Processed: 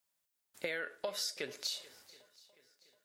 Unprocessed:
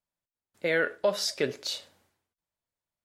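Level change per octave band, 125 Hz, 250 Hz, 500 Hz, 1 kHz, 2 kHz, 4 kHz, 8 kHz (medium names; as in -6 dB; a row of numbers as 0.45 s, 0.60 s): -16.5 dB, -15.0 dB, -13.5 dB, -11.5 dB, -10.5 dB, -6.0 dB, -5.0 dB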